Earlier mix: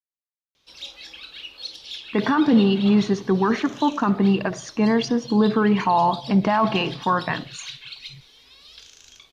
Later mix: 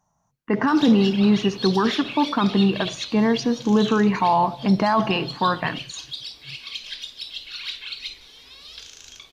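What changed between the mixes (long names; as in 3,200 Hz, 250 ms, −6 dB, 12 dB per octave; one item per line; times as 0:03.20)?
speech: entry −1.65 s
background +5.0 dB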